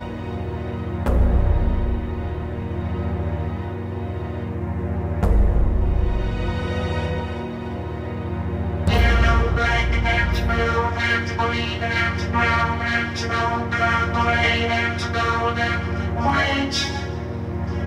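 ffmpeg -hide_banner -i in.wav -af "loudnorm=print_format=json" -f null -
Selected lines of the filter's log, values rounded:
"input_i" : "-22.2",
"input_tp" : "-6.8",
"input_lra" : "4.1",
"input_thresh" : "-32.2",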